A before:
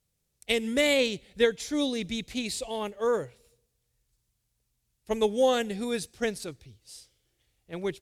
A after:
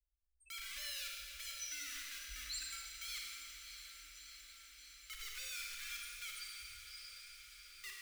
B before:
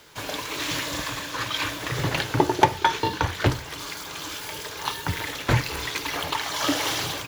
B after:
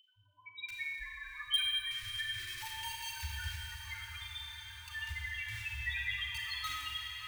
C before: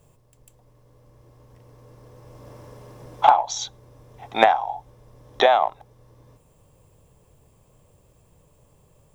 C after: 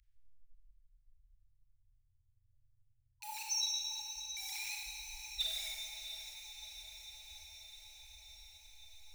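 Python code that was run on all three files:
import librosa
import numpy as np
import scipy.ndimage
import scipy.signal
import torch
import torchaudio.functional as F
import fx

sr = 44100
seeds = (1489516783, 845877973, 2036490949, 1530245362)

p1 = fx.spec_topn(x, sr, count=1)
p2 = fx.low_shelf(p1, sr, hz=83.0, db=-4.5)
p3 = np.where(np.abs(p2) >= 10.0 ** (-37.0 / 20.0), p2, 0.0)
p4 = p2 + (p3 * 10.0 ** (-8.0 / 20.0))
p5 = scipy.signal.sosfilt(scipy.signal.cheby2(4, 50, [130.0, 780.0], 'bandstop', fs=sr, output='sos'), p4)
p6 = p5 + fx.echo_diffused(p5, sr, ms=676, feedback_pct=73, wet_db=-10, dry=0)
p7 = fx.rev_schroeder(p6, sr, rt60_s=2.2, comb_ms=28, drr_db=-1.5)
y = p7 * 10.0 ** (9.5 / 20.0)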